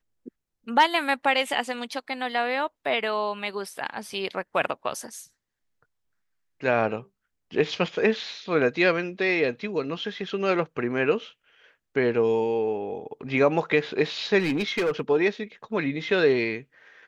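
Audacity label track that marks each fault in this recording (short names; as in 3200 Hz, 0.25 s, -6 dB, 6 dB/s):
14.390000	15.010000	clipped -20.5 dBFS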